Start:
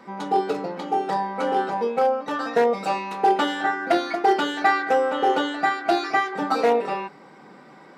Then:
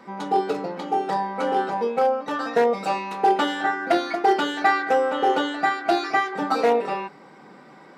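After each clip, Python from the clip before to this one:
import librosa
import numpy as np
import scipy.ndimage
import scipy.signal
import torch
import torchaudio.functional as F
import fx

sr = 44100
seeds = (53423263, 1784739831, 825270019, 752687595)

y = x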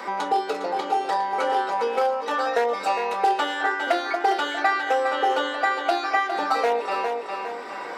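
y = scipy.signal.sosfilt(scipy.signal.butter(2, 500.0, 'highpass', fs=sr, output='sos'), x)
y = fx.echo_feedback(y, sr, ms=406, feedback_pct=23, wet_db=-10.0)
y = fx.band_squash(y, sr, depth_pct=70)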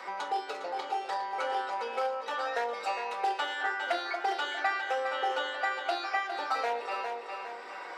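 y = fx.weighting(x, sr, curve='A')
y = fx.room_shoebox(y, sr, seeds[0], volume_m3=1000.0, walls='furnished', distance_m=0.98)
y = y * librosa.db_to_amplitude(-8.0)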